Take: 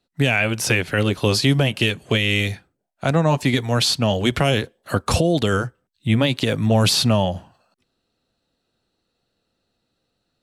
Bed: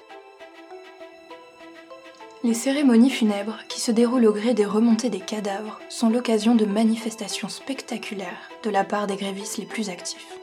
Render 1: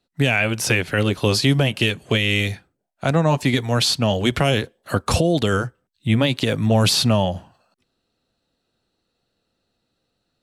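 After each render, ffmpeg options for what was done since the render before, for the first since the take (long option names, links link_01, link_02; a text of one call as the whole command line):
ffmpeg -i in.wav -af anull out.wav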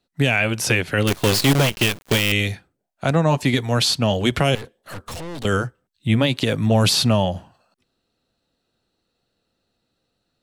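ffmpeg -i in.wav -filter_complex "[0:a]asettb=1/sr,asplit=3[link_01][link_02][link_03];[link_01]atrim=end=1.074[link_04];[link_02]atrim=start=1.07:end=2.32,asetpts=PTS-STARTPTS,afade=type=in:duration=0.004:curve=qsin,afade=type=out:start_time=1.246:duration=0.004:curve=qsin,acrusher=bits=4:dc=4:mix=0:aa=0.000001[link_05];[link_03]atrim=start=2.316[link_06];[link_04][link_05]acrossfade=duration=0.004:curve1=hsin:curve2=qsin[link_07];[link_07][link_06]acrossfade=duration=0.004:curve1=qsin:curve2=hsin,asettb=1/sr,asplit=3[link_08][link_09][link_10];[link_08]atrim=end=4.554[link_11];[link_09]atrim=start=4.55:end=5.45,asetpts=PTS-STARTPTS,afade=type=in:duration=0.004:curve=qsin,afade=type=out:start_time=0.896:duration=0.004:curve=qsin,aeval=exprs='(tanh(35.5*val(0)+0.4)-tanh(0.4))/35.5':channel_layout=same[link_12];[link_10]atrim=start=5.446[link_13];[link_11][link_12]acrossfade=duration=0.004:curve1=hsin:curve2=qsin[link_14];[link_14][link_13]acrossfade=duration=0.004:curve1=qsin:curve2=hsin" out.wav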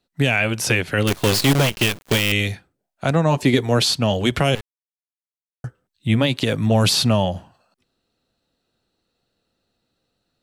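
ffmpeg -i in.wav -filter_complex "[0:a]asettb=1/sr,asplit=3[link_01][link_02][link_03];[link_01]atrim=end=3.374[link_04];[link_02]atrim=start=3.37:end=3.84,asetpts=PTS-STARTPTS,afade=type=in:duration=0.004:curve=qsin,afade=type=out:start_time=0.466:duration=0.004:curve=qsin,equalizer=frequency=390:width=1.3:gain=7[link_05];[link_03]atrim=start=3.836[link_06];[link_04][link_05]acrossfade=duration=0.004:curve1=hsin:curve2=qsin[link_07];[link_07][link_06]acrossfade=duration=0.004:curve1=qsin:curve2=hsin,asplit=3[link_08][link_09][link_10];[link_08]atrim=end=4.61,asetpts=PTS-STARTPTS,afade=type=out:start_time=4.606:duration=0.004:curve=hsin[link_11];[link_09]atrim=start=4.61:end=5.64,asetpts=PTS-STARTPTS,volume=0[link_12];[link_10]atrim=start=5.64,asetpts=PTS-STARTPTS,afade=type=in:duration=0.004:curve=hsin[link_13];[link_11][link_12][link_13]concat=n=3:v=0:a=1" out.wav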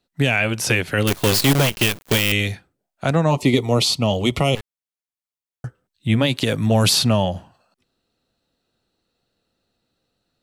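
ffmpeg -i in.wav -filter_complex "[0:a]asettb=1/sr,asplit=3[link_01][link_02][link_03];[link_01]atrim=end=0.694[link_04];[link_02]atrim=start=0.69:end=2.36,asetpts=PTS-STARTPTS,afade=type=in:duration=0.004:curve=qsin,afade=type=out:start_time=1.666:duration=0.004:curve=qsin,highshelf=frequency=11000:gain=6.5[link_05];[link_03]atrim=start=2.356[link_06];[link_04][link_05]acrossfade=duration=0.004:curve1=hsin:curve2=qsin[link_07];[link_07][link_06]acrossfade=duration=0.004:curve1=qsin:curve2=hsin,asettb=1/sr,asplit=3[link_08][link_09][link_10];[link_08]atrim=end=3.314[link_11];[link_09]atrim=start=3.31:end=4.57,asetpts=PTS-STARTPTS,afade=type=in:duration=0.004:curve=qsin,afade=type=out:start_time=1.256:duration=0.004:curve=qsin,asuperstop=centerf=1600:order=4:qfactor=2.5[link_12];[link_10]atrim=start=4.566[link_13];[link_11][link_12]acrossfade=duration=0.004:curve1=hsin:curve2=qsin[link_14];[link_14][link_13]acrossfade=duration=0.004:curve1=qsin:curve2=hsin,asettb=1/sr,asplit=3[link_15][link_16][link_17];[link_15]atrim=end=6.254[link_18];[link_16]atrim=start=6.25:end=6.99,asetpts=PTS-STARTPTS,afade=type=in:duration=0.004:curve=qsin,afade=type=out:start_time=0.736:duration=0.004:curve=qsin,equalizer=frequency=13000:width=0.42:gain=4.5[link_19];[link_17]atrim=start=6.986[link_20];[link_18][link_19]acrossfade=duration=0.004:curve1=hsin:curve2=qsin[link_21];[link_21][link_20]acrossfade=duration=0.004:curve1=qsin:curve2=hsin" out.wav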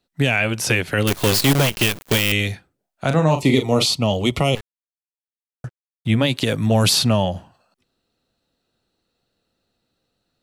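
ffmpeg -i in.wav -filter_complex "[0:a]asettb=1/sr,asplit=3[link_01][link_02][link_03];[link_01]atrim=end=0.934[link_04];[link_02]atrim=start=0.93:end=2.05,asetpts=PTS-STARTPTS,afade=type=in:duration=0.004:curve=qsin,afade=type=out:start_time=1.116:duration=0.004:curve=qsin,acompressor=mode=upward:threshold=-19dB:ratio=2.5:attack=3.2:release=140:knee=2.83:detection=peak[link_05];[link_03]atrim=start=2.046[link_06];[link_04][link_05]acrossfade=duration=0.004:curve1=hsin:curve2=qsin[link_07];[link_07][link_06]acrossfade=duration=0.004:curve1=qsin:curve2=hsin,asettb=1/sr,asplit=3[link_08][link_09][link_10];[link_08]atrim=end=3.074[link_11];[link_09]atrim=start=3.07:end=3.86,asetpts=PTS-STARTPTS,afade=type=in:duration=0.004:curve=qsin,afade=type=out:start_time=0.786:duration=0.004:curve=qsin,asplit=2[link_12][link_13];[link_13]adelay=38,volume=-7.5dB[link_14];[link_12][link_14]amix=inputs=2:normalize=0,atrim=end_sample=34839[link_15];[link_10]atrim=start=3.856[link_16];[link_11][link_15]acrossfade=duration=0.004:curve1=hsin:curve2=qsin[link_17];[link_17][link_16]acrossfade=duration=0.004:curve1=qsin:curve2=hsin,asettb=1/sr,asplit=3[link_18][link_19][link_20];[link_18]atrim=end=4.584[link_21];[link_19]atrim=start=4.58:end=6.1,asetpts=PTS-STARTPTS,afade=type=in:duration=0.004:curve=qsin,afade=type=out:start_time=1.516:duration=0.004:curve=qsin,aeval=exprs='sgn(val(0))*max(abs(val(0))-0.00668,0)':channel_layout=same[link_22];[link_20]atrim=start=6.096[link_23];[link_21][link_22]acrossfade=duration=0.004:curve1=hsin:curve2=qsin[link_24];[link_24][link_23]acrossfade=duration=0.004:curve1=qsin:curve2=hsin" out.wav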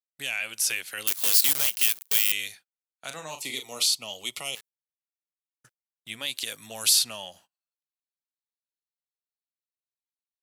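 ffmpeg -i in.wav -af "agate=range=-26dB:threshold=-35dB:ratio=16:detection=peak,aderivative" out.wav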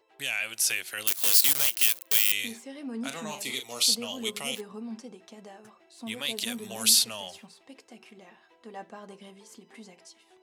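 ffmpeg -i in.wav -i bed.wav -filter_complex "[1:a]volume=-20dB[link_01];[0:a][link_01]amix=inputs=2:normalize=0" out.wav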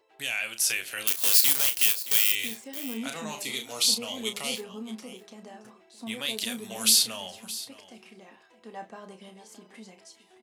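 ffmpeg -i in.wav -filter_complex "[0:a]asplit=2[link_01][link_02];[link_02]adelay=32,volume=-9dB[link_03];[link_01][link_03]amix=inputs=2:normalize=0,aecho=1:1:620:0.158" out.wav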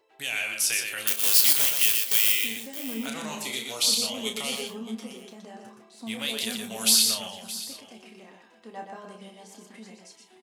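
ffmpeg -i in.wav -filter_complex "[0:a]asplit=2[link_01][link_02];[link_02]adelay=27,volume=-12dB[link_03];[link_01][link_03]amix=inputs=2:normalize=0,asplit=2[link_04][link_05];[link_05]aecho=0:1:121:0.562[link_06];[link_04][link_06]amix=inputs=2:normalize=0" out.wav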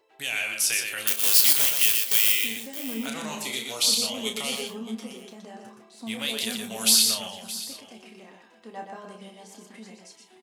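ffmpeg -i in.wav -af "volume=1dB" out.wav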